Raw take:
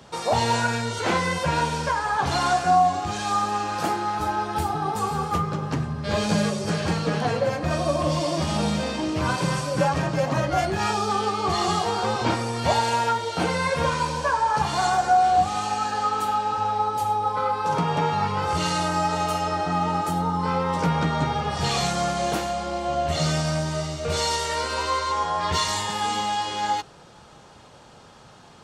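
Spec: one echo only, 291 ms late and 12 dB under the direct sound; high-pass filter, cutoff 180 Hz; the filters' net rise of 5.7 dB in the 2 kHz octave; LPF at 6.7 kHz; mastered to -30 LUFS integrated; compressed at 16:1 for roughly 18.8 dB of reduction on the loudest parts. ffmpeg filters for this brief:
-af "highpass=180,lowpass=6700,equalizer=f=2000:t=o:g=7.5,acompressor=threshold=0.0224:ratio=16,aecho=1:1:291:0.251,volume=2"

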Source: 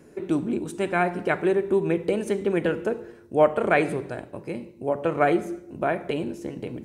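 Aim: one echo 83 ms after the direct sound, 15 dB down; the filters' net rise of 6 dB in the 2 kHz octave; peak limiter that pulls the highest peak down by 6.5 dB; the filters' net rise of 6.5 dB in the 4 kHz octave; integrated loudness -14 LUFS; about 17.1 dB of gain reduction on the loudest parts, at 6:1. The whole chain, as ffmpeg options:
-af "equalizer=f=2000:t=o:g=6.5,equalizer=f=4000:t=o:g=6,acompressor=threshold=0.0282:ratio=6,alimiter=level_in=1.12:limit=0.0631:level=0:latency=1,volume=0.891,aecho=1:1:83:0.178,volume=14.1"

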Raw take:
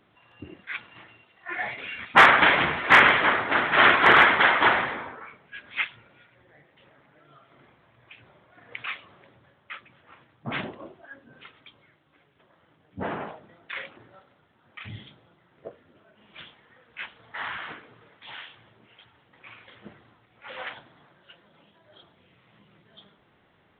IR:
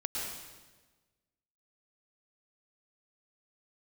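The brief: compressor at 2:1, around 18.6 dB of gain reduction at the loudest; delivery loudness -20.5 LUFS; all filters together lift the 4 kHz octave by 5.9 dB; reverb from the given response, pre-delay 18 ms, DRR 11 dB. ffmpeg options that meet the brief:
-filter_complex "[0:a]equalizer=f=4000:t=o:g=8.5,acompressor=threshold=0.00631:ratio=2,asplit=2[s0][s1];[1:a]atrim=start_sample=2205,adelay=18[s2];[s1][s2]afir=irnorm=-1:irlink=0,volume=0.178[s3];[s0][s3]amix=inputs=2:normalize=0,volume=7.08"

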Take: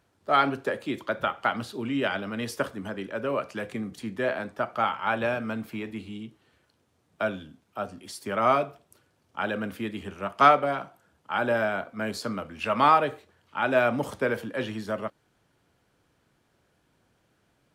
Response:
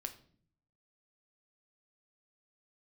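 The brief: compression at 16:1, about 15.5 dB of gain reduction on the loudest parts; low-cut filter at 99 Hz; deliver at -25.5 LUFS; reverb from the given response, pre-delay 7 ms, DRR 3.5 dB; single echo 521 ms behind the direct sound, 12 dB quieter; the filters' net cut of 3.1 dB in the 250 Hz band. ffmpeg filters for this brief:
-filter_complex "[0:a]highpass=99,equalizer=f=250:t=o:g=-3.5,acompressor=threshold=0.0447:ratio=16,aecho=1:1:521:0.251,asplit=2[s0][s1];[1:a]atrim=start_sample=2205,adelay=7[s2];[s1][s2]afir=irnorm=-1:irlink=0,volume=0.841[s3];[s0][s3]amix=inputs=2:normalize=0,volume=2.37"

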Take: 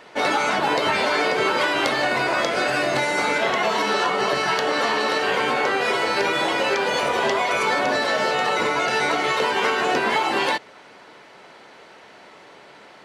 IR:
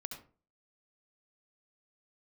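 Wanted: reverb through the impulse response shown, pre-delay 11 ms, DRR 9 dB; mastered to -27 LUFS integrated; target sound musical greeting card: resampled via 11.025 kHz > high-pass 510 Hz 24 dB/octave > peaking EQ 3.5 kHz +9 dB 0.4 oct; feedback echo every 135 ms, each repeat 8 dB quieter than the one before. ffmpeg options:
-filter_complex "[0:a]aecho=1:1:135|270|405|540|675:0.398|0.159|0.0637|0.0255|0.0102,asplit=2[s0][s1];[1:a]atrim=start_sample=2205,adelay=11[s2];[s1][s2]afir=irnorm=-1:irlink=0,volume=0.447[s3];[s0][s3]amix=inputs=2:normalize=0,aresample=11025,aresample=44100,highpass=f=510:w=0.5412,highpass=f=510:w=1.3066,equalizer=f=3500:t=o:w=0.4:g=9,volume=0.398"

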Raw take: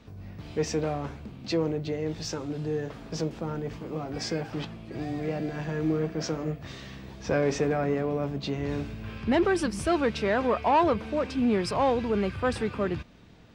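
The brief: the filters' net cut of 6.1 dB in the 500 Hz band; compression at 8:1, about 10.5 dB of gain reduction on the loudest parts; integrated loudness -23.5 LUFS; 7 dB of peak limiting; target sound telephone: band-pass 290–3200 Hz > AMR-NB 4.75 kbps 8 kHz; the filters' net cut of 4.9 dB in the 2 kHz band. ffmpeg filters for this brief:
-af "equalizer=f=500:t=o:g=-6.5,equalizer=f=2000:t=o:g=-5.5,acompressor=threshold=0.0224:ratio=8,alimiter=level_in=2.24:limit=0.0631:level=0:latency=1,volume=0.447,highpass=290,lowpass=3200,volume=11.9" -ar 8000 -c:a libopencore_amrnb -b:a 4750

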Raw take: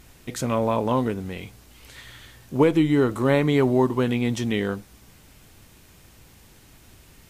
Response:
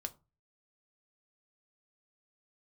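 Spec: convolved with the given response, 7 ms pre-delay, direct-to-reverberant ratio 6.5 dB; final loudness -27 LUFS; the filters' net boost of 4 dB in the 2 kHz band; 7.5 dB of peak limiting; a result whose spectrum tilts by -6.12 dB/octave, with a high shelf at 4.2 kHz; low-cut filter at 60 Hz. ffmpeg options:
-filter_complex "[0:a]highpass=60,equalizer=f=2000:t=o:g=5.5,highshelf=f=4200:g=-3.5,alimiter=limit=0.211:level=0:latency=1,asplit=2[s0][s1];[1:a]atrim=start_sample=2205,adelay=7[s2];[s1][s2]afir=irnorm=-1:irlink=0,volume=0.596[s3];[s0][s3]amix=inputs=2:normalize=0,volume=0.708"

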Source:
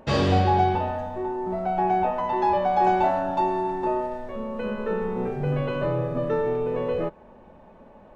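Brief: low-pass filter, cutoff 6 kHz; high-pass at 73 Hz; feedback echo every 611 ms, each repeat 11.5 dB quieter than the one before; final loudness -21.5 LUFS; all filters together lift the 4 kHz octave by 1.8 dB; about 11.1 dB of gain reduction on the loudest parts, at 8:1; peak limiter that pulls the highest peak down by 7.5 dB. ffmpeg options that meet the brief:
-af "highpass=73,lowpass=6000,equalizer=f=4000:t=o:g=3,acompressor=threshold=0.0398:ratio=8,alimiter=level_in=1.19:limit=0.0631:level=0:latency=1,volume=0.841,aecho=1:1:611|1222|1833:0.266|0.0718|0.0194,volume=3.98"

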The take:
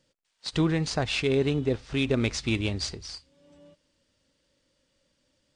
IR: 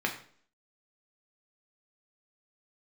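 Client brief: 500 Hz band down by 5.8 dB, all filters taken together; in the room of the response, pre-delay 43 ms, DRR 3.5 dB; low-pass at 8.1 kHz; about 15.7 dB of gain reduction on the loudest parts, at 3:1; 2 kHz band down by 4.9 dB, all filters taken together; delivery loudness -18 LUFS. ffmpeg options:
-filter_complex "[0:a]lowpass=8100,equalizer=f=500:t=o:g=-7.5,equalizer=f=2000:t=o:g=-6.5,acompressor=threshold=0.00562:ratio=3,asplit=2[s0][s1];[1:a]atrim=start_sample=2205,adelay=43[s2];[s1][s2]afir=irnorm=-1:irlink=0,volume=0.251[s3];[s0][s3]amix=inputs=2:normalize=0,volume=17.8"

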